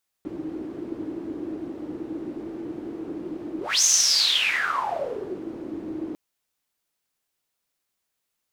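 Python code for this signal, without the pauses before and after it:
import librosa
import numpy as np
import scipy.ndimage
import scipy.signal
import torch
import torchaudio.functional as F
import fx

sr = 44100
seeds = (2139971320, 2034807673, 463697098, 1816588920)

y = fx.whoosh(sr, seeds[0], length_s=5.9, peak_s=3.58, rise_s=0.25, fall_s=1.69, ends_hz=320.0, peak_hz=6300.0, q=10.0, swell_db=14.5)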